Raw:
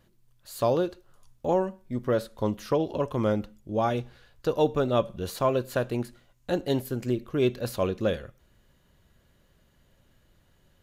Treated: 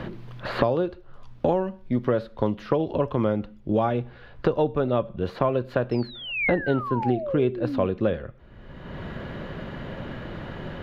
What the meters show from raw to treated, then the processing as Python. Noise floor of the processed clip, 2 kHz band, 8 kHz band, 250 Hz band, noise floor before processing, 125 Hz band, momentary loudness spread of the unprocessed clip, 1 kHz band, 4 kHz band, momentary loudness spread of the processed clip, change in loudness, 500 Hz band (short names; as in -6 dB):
-48 dBFS, +8.5 dB, under -15 dB, +3.5 dB, -65 dBFS, +3.5 dB, 8 LU, +2.5 dB, +1.0 dB, 13 LU, +2.0 dB, +2.0 dB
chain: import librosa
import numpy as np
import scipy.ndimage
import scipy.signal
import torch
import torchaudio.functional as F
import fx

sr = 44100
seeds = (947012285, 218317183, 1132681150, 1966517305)

y = fx.spec_paint(x, sr, seeds[0], shape='fall', start_s=5.91, length_s=1.96, low_hz=220.0, high_hz=5400.0, level_db=-35.0)
y = fx.air_absorb(y, sr, metres=330.0)
y = fx.band_squash(y, sr, depth_pct=100)
y = y * librosa.db_to_amplitude(3.0)